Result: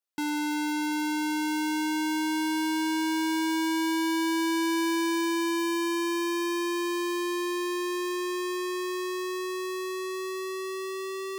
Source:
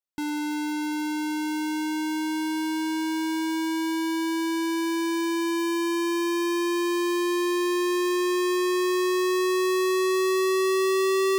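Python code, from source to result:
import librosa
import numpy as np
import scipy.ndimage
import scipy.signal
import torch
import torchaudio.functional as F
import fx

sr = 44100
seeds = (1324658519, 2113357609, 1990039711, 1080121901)

y = fx.highpass(x, sr, hz=290.0, slope=6)
y = fx.over_compress(y, sr, threshold_db=-28.0, ratio=-0.5)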